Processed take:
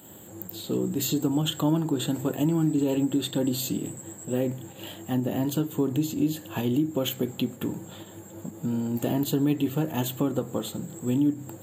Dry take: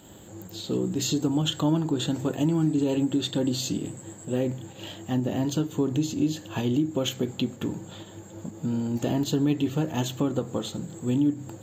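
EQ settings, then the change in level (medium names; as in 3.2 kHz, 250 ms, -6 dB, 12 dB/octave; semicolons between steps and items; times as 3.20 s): high-pass 99 Hz; resonant high shelf 7.8 kHz +10 dB, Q 3; 0.0 dB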